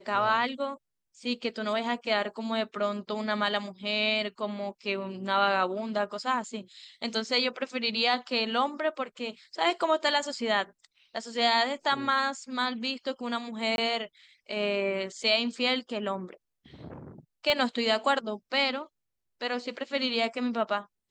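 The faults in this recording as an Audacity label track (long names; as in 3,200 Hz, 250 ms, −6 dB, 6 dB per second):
13.760000	13.780000	drop-out 21 ms
17.500000	17.500000	click −13 dBFS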